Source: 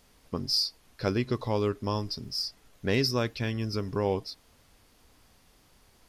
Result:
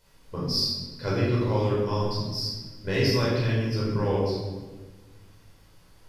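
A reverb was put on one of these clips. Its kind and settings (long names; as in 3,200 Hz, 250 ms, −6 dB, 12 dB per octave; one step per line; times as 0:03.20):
rectangular room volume 980 cubic metres, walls mixed, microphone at 4.9 metres
level −7 dB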